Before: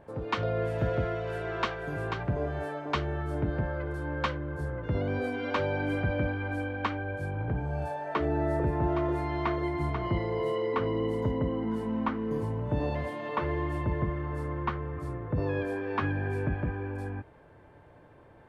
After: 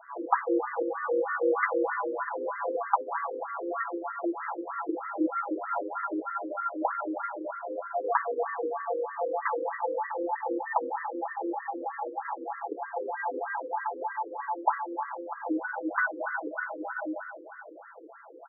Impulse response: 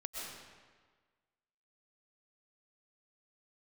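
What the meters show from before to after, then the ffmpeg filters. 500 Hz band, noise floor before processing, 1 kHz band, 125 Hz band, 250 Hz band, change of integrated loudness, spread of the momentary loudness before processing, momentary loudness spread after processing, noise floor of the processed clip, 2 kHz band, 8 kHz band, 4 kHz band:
0.0 dB, -55 dBFS, +5.5 dB, under -40 dB, -3.0 dB, 0.0 dB, 5 LU, 8 LU, -47 dBFS, +2.5 dB, no reading, under -40 dB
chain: -filter_complex "[0:a]aecho=1:1:6:0.8,acompressor=threshold=0.0355:ratio=6,crystalizer=i=8:c=0,highpass=f=260:t=q:w=0.5412,highpass=f=260:t=q:w=1.307,lowpass=f=2300:t=q:w=0.5176,lowpass=f=2300:t=q:w=0.7071,lowpass=f=2300:t=q:w=1.932,afreqshift=-180,asplit=2[s0][s1];[1:a]atrim=start_sample=2205,asetrate=29547,aresample=44100[s2];[s1][s2]afir=irnorm=-1:irlink=0,volume=0.668[s3];[s0][s3]amix=inputs=2:normalize=0,afftfilt=real='re*between(b*sr/1024,370*pow(1500/370,0.5+0.5*sin(2*PI*3.2*pts/sr))/1.41,370*pow(1500/370,0.5+0.5*sin(2*PI*3.2*pts/sr))*1.41)':imag='im*between(b*sr/1024,370*pow(1500/370,0.5+0.5*sin(2*PI*3.2*pts/sr))/1.41,370*pow(1500/370,0.5+0.5*sin(2*PI*3.2*pts/sr))*1.41)':win_size=1024:overlap=0.75,volume=1.58"

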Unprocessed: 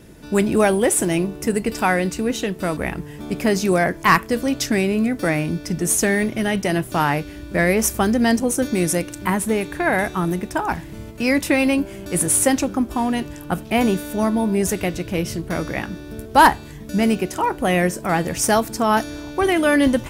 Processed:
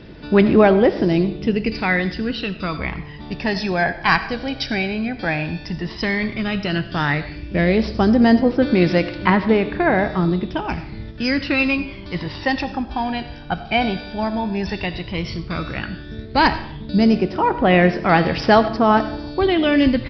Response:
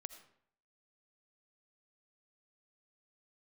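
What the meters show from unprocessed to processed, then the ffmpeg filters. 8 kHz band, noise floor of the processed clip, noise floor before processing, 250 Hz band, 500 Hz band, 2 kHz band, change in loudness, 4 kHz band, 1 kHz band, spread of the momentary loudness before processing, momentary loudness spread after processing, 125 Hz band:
under -25 dB, -35 dBFS, -37 dBFS, +1.5 dB, +1.5 dB, +1.0 dB, +0.5 dB, +2.5 dB, 0.0 dB, 9 LU, 12 LU, +2.5 dB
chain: -filter_complex "[0:a]aphaser=in_gain=1:out_gain=1:delay=1.3:decay=0.56:speed=0.11:type=sinusoidal,asplit=2[s0][s1];[1:a]atrim=start_sample=2205,highshelf=f=2500:g=9.5[s2];[s1][s2]afir=irnorm=-1:irlink=0,volume=3.55[s3];[s0][s3]amix=inputs=2:normalize=0,aresample=11025,aresample=44100,volume=0.251"

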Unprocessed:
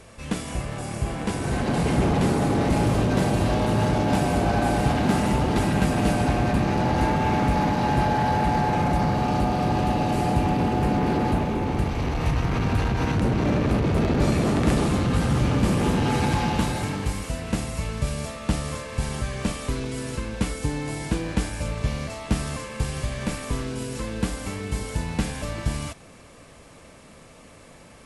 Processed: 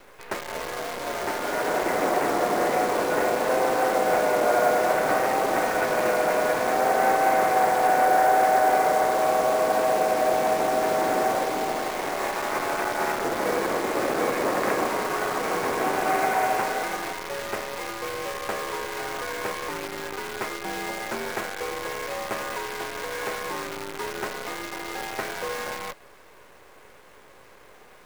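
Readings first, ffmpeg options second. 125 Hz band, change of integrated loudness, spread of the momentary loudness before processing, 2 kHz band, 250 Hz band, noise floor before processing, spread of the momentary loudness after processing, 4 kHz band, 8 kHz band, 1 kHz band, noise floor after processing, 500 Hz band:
-21.5 dB, -0.5 dB, 8 LU, +4.5 dB, -9.5 dB, -48 dBFS, 11 LU, -0.5 dB, +1.0 dB, +4.0 dB, -50 dBFS, +4.5 dB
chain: -af "highpass=f=500:t=q:w=0.5412,highpass=f=500:t=q:w=1.307,lowpass=f=2300:t=q:w=0.5176,lowpass=f=2300:t=q:w=0.7071,lowpass=f=2300:t=q:w=1.932,afreqshift=-100,acrusher=bits=7:dc=4:mix=0:aa=0.000001,volume=1.88"

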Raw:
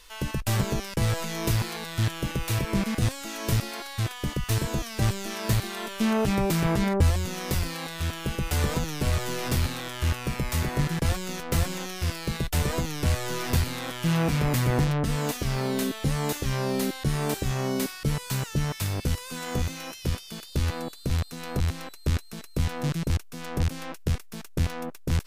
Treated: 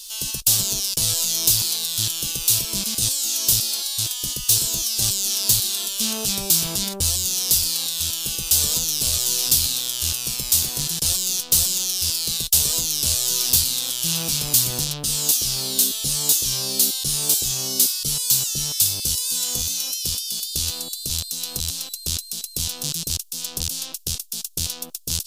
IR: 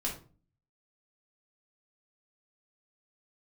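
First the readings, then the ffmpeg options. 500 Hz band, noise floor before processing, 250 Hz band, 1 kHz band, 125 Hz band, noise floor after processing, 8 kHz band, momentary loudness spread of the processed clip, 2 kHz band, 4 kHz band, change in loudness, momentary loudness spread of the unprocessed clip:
-8.0 dB, -44 dBFS, -8.0 dB, -8.0 dB, -8.0 dB, -38 dBFS, +18.5 dB, 8 LU, -4.0 dB, +14.0 dB, +8.5 dB, 7 LU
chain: -af "aexciter=amount=11.4:drive=8:freq=3100,volume=0.398"

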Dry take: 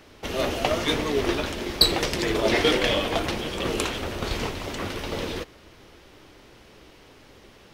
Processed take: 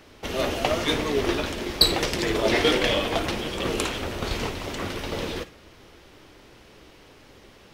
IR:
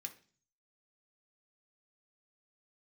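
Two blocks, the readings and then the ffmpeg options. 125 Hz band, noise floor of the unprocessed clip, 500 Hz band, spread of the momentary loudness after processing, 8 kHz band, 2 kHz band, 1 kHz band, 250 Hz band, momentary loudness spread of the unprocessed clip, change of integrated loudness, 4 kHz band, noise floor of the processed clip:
0.0 dB, -52 dBFS, 0.0 dB, 11 LU, +0.5 dB, 0.0 dB, 0.0 dB, 0.0 dB, 11 LU, 0.0 dB, 0.0 dB, -51 dBFS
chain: -filter_complex "[0:a]asplit=2[s0][s1];[1:a]atrim=start_sample=2205,adelay=53[s2];[s1][s2]afir=irnorm=-1:irlink=0,volume=0.316[s3];[s0][s3]amix=inputs=2:normalize=0"

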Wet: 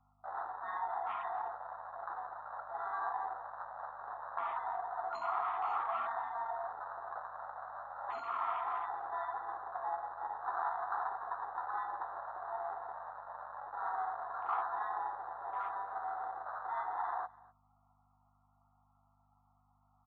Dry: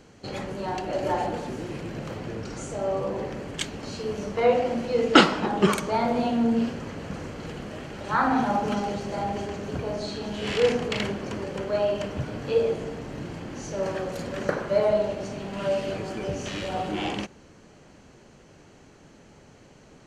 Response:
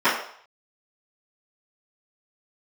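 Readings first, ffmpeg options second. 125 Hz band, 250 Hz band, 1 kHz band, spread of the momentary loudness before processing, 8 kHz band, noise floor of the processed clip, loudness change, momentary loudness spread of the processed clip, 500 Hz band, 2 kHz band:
under -35 dB, under -40 dB, -5.0 dB, 13 LU, under -35 dB, -72 dBFS, -12.5 dB, 9 LU, -21.0 dB, -13.5 dB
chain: -filter_complex "[0:a]afftfilt=real='re*between(b*sr/4096,670,1400)':imag='im*between(b*sr/4096,670,1400)':win_size=4096:overlap=0.75,afwtdn=0.00794,afftfilt=real='re*lt(hypot(re,im),0.112)':imag='im*lt(hypot(re,im),0.112)':win_size=1024:overlap=0.75,aeval=exprs='val(0)+0.000178*(sin(2*PI*50*n/s)+sin(2*PI*2*50*n/s)/2+sin(2*PI*3*50*n/s)/3+sin(2*PI*4*50*n/s)/4+sin(2*PI*5*50*n/s)/5)':c=same,asplit=2[s0][s1];[s1]adelay=12,volume=0.447[s2];[s0][s2]amix=inputs=2:normalize=0,asplit=2[s3][s4];[s4]aecho=0:1:250:0.075[s5];[s3][s5]amix=inputs=2:normalize=0,volume=1.58" -ar 16000 -c:a libmp3lame -b:a 32k

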